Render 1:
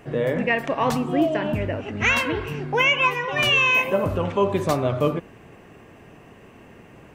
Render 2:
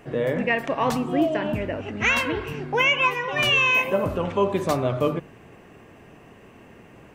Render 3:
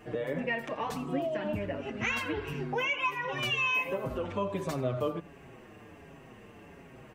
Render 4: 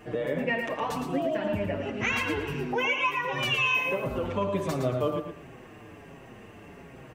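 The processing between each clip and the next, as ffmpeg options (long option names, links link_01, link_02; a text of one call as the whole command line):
ffmpeg -i in.wav -af "bandreject=frequency=50:width_type=h:width=6,bandreject=frequency=100:width_type=h:width=6,bandreject=frequency=150:width_type=h:width=6,volume=-1dB" out.wav
ffmpeg -i in.wav -filter_complex "[0:a]acompressor=threshold=-31dB:ratio=2,aecho=1:1:84:0.106,asplit=2[link_01][link_02];[link_02]adelay=6.1,afreqshift=-1.4[link_03];[link_01][link_03]amix=inputs=2:normalize=1" out.wav
ffmpeg -i in.wav -af "aecho=1:1:113|226|339:0.473|0.123|0.032,volume=3dB" out.wav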